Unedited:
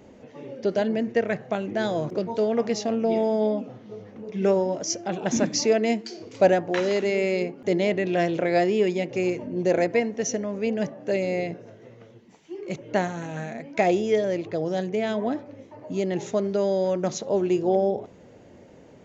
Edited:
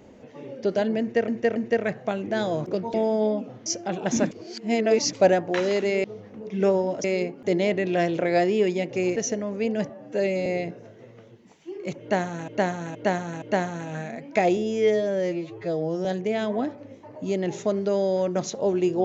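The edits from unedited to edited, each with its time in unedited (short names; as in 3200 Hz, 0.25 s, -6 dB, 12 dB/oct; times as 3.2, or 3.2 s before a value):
1–1.28 loop, 3 plays
2.38–3.14 cut
3.86–4.86 move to 7.24
5.51–6.33 reverse
9.36–10.18 cut
10.91–11.29 stretch 1.5×
12.84–13.31 loop, 4 plays
13.99–14.73 stretch 2×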